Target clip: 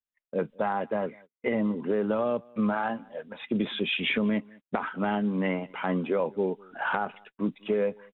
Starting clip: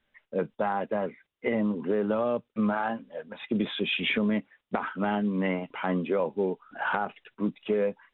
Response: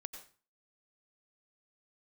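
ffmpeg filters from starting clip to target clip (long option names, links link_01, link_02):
-filter_complex "[0:a]asplit=2[link_01][link_02];[link_02]adelay=198.3,volume=-26dB,highshelf=frequency=4000:gain=-4.46[link_03];[link_01][link_03]amix=inputs=2:normalize=0,agate=range=-30dB:threshold=-49dB:ratio=16:detection=peak"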